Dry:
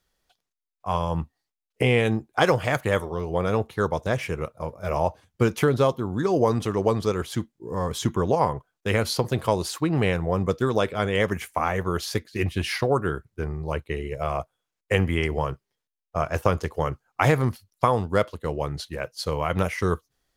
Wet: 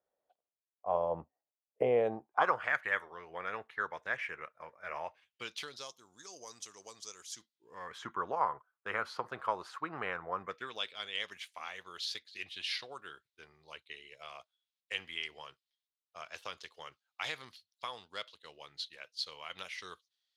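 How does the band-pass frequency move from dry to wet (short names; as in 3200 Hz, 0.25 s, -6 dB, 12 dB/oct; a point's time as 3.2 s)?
band-pass, Q 3
2.03 s 600 Hz
2.77 s 1800 Hz
4.98 s 1800 Hz
5.95 s 6300 Hz
7.32 s 6300 Hz
8.06 s 1300 Hz
10.36 s 1300 Hz
10.88 s 3700 Hz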